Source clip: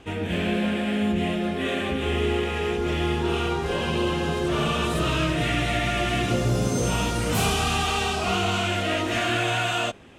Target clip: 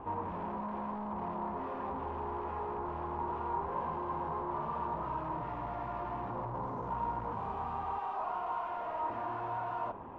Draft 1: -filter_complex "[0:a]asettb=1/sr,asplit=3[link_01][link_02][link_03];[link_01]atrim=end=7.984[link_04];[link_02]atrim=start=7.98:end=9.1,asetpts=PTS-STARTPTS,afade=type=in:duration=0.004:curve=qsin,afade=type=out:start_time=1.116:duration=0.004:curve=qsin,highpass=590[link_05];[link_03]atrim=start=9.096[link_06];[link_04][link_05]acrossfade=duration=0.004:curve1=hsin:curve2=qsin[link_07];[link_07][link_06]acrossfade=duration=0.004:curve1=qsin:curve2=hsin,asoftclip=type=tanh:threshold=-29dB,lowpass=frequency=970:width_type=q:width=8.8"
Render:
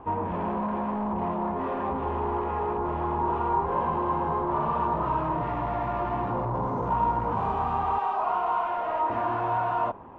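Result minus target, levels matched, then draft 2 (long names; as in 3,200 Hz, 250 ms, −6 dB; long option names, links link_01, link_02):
soft clipping: distortion −4 dB
-filter_complex "[0:a]asettb=1/sr,asplit=3[link_01][link_02][link_03];[link_01]atrim=end=7.984[link_04];[link_02]atrim=start=7.98:end=9.1,asetpts=PTS-STARTPTS,afade=type=in:duration=0.004:curve=qsin,afade=type=out:start_time=1.116:duration=0.004:curve=qsin,highpass=590[link_05];[link_03]atrim=start=9.096[link_06];[link_04][link_05]acrossfade=duration=0.004:curve1=hsin:curve2=qsin[link_07];[link_07][link_06]acrossfade=duration=0.004:curve1=qsin:curve2=hsin,asoftclip=type=tanh:threshold=-41dB,lowpass=frequency=970:width_type=q:width=8.8"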